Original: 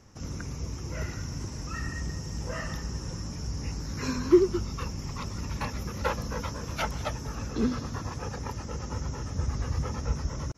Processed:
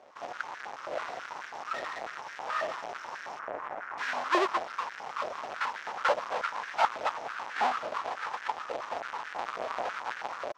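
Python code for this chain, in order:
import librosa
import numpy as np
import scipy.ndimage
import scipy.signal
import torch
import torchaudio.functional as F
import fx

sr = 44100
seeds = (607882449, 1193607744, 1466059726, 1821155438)

y = fx.halfwave_hold(x, sr)
y = fx.high_shelf_res(y, sr, hz=2600.0, db=-12.5, q=1.5, at=(3.39, 3.98))
y = 10.0 ** (-17.5 / 20.0) * np.tanh(y / 10.0 ** (-17.5 / 20.0))
y = fx.air_absorb(y, sr, metres=140.0)
y = fx.filter_held_highpass(y, sr, hz=9.2, low_hz=620.0, high_hz=1600.0)
y = y * 10.0 ** (-2.0 / 20.0)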